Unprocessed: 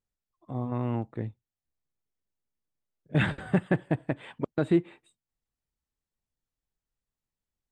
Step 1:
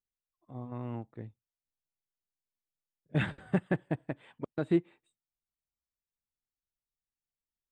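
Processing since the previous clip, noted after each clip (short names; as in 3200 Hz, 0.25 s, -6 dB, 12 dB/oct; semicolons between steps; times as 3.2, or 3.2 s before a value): upward expander 1.5:1, over -35 dBFS; gain -3 dB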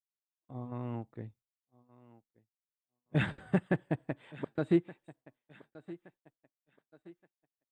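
thinning echo 1.171 s, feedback 47%, high-pass 170 Hz, level -18 dB; expander -56 dBFS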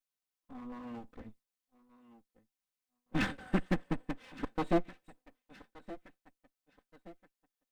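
minimum comb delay 3.9 ms; in parallel at -5.5 dB: soft clip -32 dBFS, distortion -8 dB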